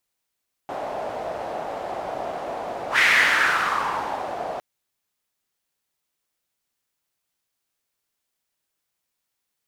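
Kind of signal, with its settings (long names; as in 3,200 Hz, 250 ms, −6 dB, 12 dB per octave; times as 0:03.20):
pass-by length 3.91 s, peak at 0:02.30, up 0.10 s, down 1.54 s, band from 680 Hz, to 2,000 Hz, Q 3.6, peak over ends 13 dB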